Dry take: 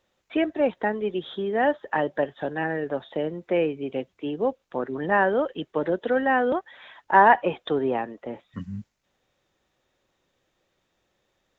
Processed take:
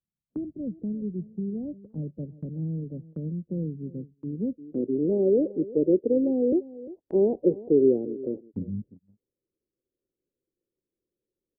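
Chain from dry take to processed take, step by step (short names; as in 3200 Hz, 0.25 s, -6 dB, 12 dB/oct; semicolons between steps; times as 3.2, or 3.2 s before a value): steep low-pass 550 Hz 36 dB/oct; echo 0.35 s -18.5 dB; low-pass sweep 170 Hz -> 380 Hz, 4.23–5.05; gate -47 dBFS, range -18 dB; mismatched tape noise reduction encoder only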